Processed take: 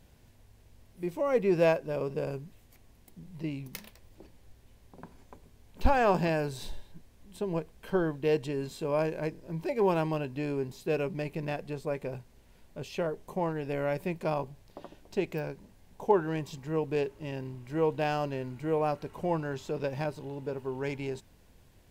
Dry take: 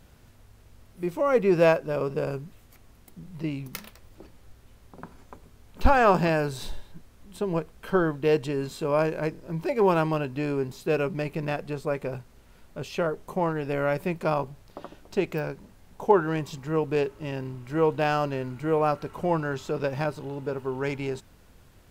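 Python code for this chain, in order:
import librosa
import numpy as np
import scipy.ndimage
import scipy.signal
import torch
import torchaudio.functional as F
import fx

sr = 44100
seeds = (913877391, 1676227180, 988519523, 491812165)

y = fx.peak_eq(x, sr, hz=1300.0, db=-8.5, octaves=0.35)
y = y * librosa.db_to_amplitude(-4.5)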